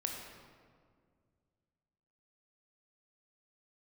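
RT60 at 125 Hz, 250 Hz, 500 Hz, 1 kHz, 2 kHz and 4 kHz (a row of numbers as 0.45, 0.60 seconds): 2.9, 2.5, 2.2, 1.8, 1.4, 1.1 seconds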